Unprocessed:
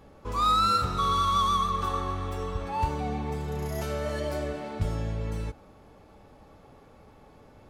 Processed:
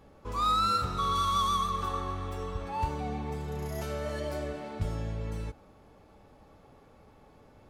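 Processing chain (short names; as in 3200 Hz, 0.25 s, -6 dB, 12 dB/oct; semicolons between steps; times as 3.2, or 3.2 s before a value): 1.15–1.82 high shelf 4900 Hz +5.5 dB; gain -3.5 dB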